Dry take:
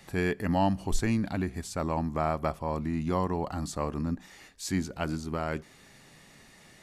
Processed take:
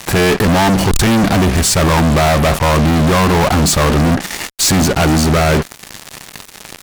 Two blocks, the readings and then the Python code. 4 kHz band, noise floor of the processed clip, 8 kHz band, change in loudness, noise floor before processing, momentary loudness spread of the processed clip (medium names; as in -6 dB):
+26.0 dB, -38 dBFS, +25.0 dB, +18.5 dB, -56 dBFS, 15 LU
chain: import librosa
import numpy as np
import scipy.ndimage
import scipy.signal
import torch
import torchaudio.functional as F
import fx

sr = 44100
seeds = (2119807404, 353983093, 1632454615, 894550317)

y = fx.fuzz(x, sr, gain_db=50.0, gate_db=-49.0)
y = y * librosa.db_to_amplitude(3.0)